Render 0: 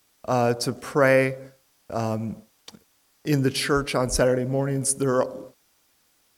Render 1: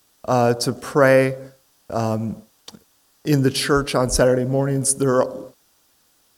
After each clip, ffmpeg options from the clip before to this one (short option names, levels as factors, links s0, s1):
-af "equalizer=f=2200:t=o:w=0.4:g=-6.5,volume=1.68"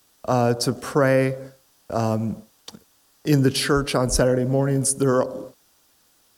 -filter_complex "[0:a]acrossover=split=290[s0][s1];[s1]acompressor=threshold=0.112:ratio=2.5[s2];[s0][s2]amix=inputs=2:normalize=0"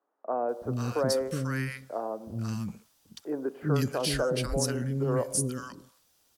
-filter_complex "[0:a]acrossover=split=310|1300[s0][s1][s2];[s0]adelay=370[s3];[s2]adelay=490[s4];[s3][s1][s4]amix=inputs=3:normalize=0,volume=0.447"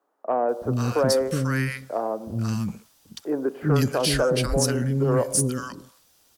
-af "asoftclip=type=tanh:threshold=0.141,volume=2.24"